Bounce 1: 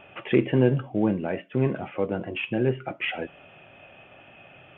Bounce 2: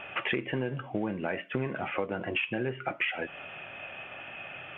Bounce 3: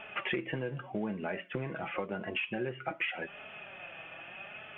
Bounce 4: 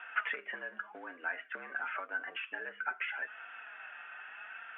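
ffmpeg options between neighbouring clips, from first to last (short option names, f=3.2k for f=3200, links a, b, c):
-af "equalizer=f=1.8k:t=o:w=2.4:g=10.5,acompressor=threshold=-27dB:ratio=16"
-af "flanger=delay=4.6:depth=1.6:regen=36:speed=0.86:shape=sinusoidal"
-af "afreqshift=75,bandpass=f=1.5k:t=q:w=5.4:csg=0,volume=9.5dB"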